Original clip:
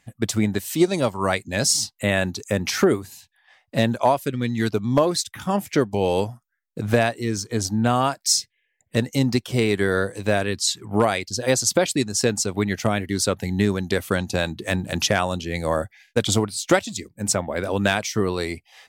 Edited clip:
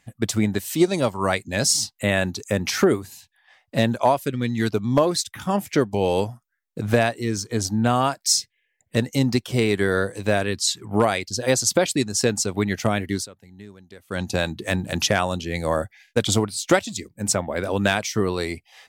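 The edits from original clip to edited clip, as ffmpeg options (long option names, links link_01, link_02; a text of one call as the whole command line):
ffmpeg -i in.wav -filter_complex "[0:a]asplit=3[link_01][link_02][link_03];[link_01]atrim=end=13.28,asetpts=PTS-STARTPTS,afade=type=out:start_time=13.14:duration=0.14:silence=0.0794328[link_04];[link_02]atrim=start=13.28:end=14.08,asetpts=PTS-STARTPTS,volume=-22dB[link_05];[link_03]atrim=start=14.08,asetpts=PTS-STARTPTS,afade=type=in:duration=0.14:silence=0.0794328[link_06];[link_04][link_05][link_06]concat=n=3:v=0:a=1" out.wav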